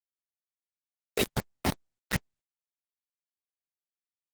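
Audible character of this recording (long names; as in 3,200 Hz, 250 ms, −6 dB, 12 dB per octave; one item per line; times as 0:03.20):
phaser sweep stages 4, 1.4 Hz, lowest notch 150–3,400 Hz
chopped level 2.2 Hz, depth 65%
a quantiser's noise floor 6 bits, dither none
Opus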